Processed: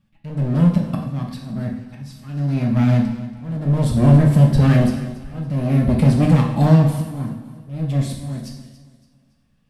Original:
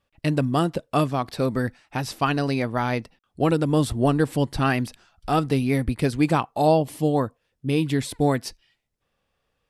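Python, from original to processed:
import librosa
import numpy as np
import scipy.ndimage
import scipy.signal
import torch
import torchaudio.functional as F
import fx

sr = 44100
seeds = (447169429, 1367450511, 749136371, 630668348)

p1 = fx.low_shelf_res(x, sr, hz=300.0, db=11.5, q=3.0)
p2 = np.clip(p1, -10.0 ** (-10.5 / 20.0), 10.0 ** (-10.5 / 20.0))
p3 = fx.auto_swell(p2, sr, attack_ms=669.0)
p4 = p3 + fx.echo_feedback(p3, sr, ms=282, feedback_pct=37, wet_db=-16.0, dry=0)
p5 = fx.rev_double_slope(p4, sr, seeds[0], early_s=0.77, late_s=3.1, knee_db=-26, drr_db=-0.5)
y = F.gain(torch.from_numpy(p5), -1.5).numpy()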